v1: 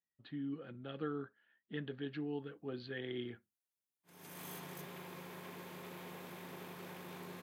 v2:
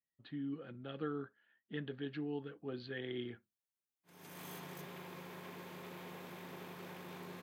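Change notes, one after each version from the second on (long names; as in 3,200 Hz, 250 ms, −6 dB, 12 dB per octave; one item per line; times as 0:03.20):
background: add parametric band 11,000 Hz −4.5 dB 0.95 octaves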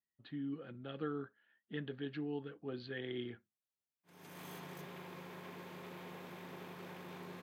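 background: add high-shelf EQ 5,900 Hz −5 dB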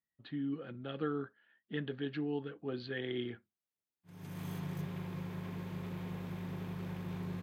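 speech +4.0 dB
background: remove high-pass filter 350 Hz 12 dB per octave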